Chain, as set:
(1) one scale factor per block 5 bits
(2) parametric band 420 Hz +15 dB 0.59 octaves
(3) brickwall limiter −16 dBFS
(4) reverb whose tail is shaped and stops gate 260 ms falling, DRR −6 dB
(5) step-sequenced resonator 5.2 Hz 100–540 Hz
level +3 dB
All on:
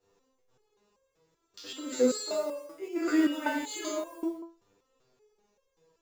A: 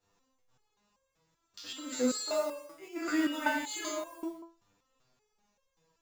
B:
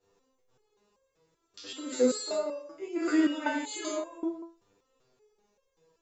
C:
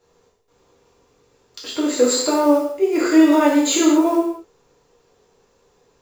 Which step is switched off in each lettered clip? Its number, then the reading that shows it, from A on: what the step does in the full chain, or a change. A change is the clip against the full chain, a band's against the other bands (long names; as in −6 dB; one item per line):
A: 2, 500 Hz band −4.5 dB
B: 1, distortion level −24 dB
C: 5, change in crest factor −3.5 dB